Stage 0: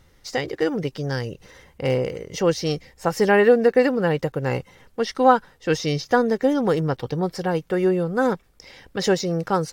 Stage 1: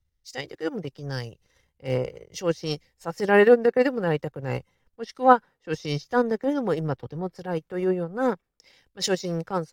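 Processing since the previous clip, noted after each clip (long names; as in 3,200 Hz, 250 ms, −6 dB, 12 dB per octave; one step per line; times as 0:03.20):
transient designer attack −7 dB, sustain −11 dB
multiband upward and downward expander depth 70%
level −2.5 dB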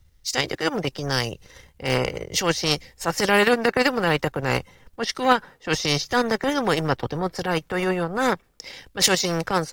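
every bin compressed towards the loudest bin 2 to 1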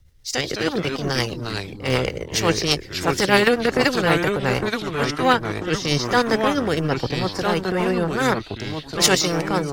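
rotating-speaker cabinet horn 8 Hz, later 1 Hz, at 0:04.43
delay with pitch and tempo change per echo 145 ms, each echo −3 semitones, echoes 3, each echo −6 dB
level +3.5 dB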